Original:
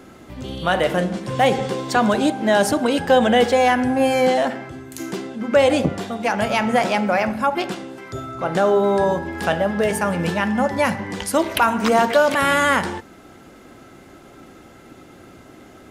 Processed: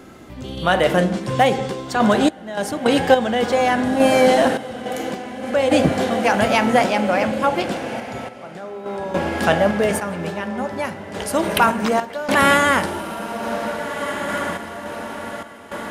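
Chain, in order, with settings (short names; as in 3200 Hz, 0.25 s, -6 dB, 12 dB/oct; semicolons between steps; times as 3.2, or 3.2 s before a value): diffused feedback echo 1.614 s, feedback 51%, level -8 dB; random-step tremolo, depth 90%; gain +3.5 dB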